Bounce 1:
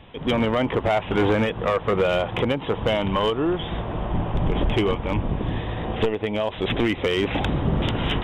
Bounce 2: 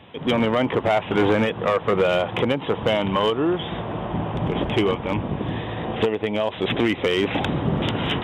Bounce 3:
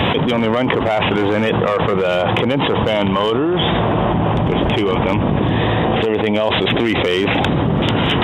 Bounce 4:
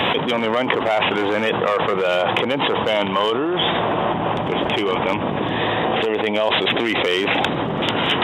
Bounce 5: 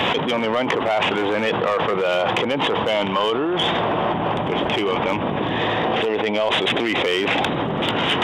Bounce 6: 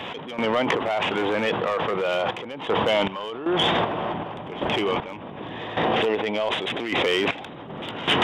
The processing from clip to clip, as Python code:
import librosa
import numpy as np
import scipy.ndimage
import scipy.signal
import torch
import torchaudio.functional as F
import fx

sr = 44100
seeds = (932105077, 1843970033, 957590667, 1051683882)

y1 = scipy.signal.sosfilt(scipy.signal.butter(2, 110.0, 'highpass', fs=sr, output='sos'), x)
y1 = y1 * librosa.db_to_amplitude(1.5)
y2 = fx.env_flatten(y1, sr, amount_pct=100)
y3 = fx.highpass(y2, sr, hz=470.0, slope=6)
y4 = 10.0 ** (-10.0 / 20.0) * np.tanh(y3 / 10.0 ** (-10.0 / 20.0))
y5 = fx.tremolo_random(y4, sr, seeds[0], hz=2.6, depth_pct=85)